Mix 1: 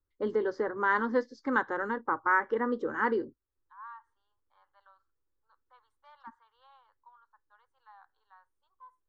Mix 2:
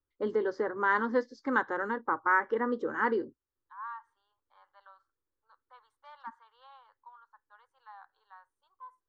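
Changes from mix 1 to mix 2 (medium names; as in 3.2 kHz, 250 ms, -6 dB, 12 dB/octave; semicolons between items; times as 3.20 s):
first voice: add bass shelf 77 Hz -9 dB; second voice +5.0 dB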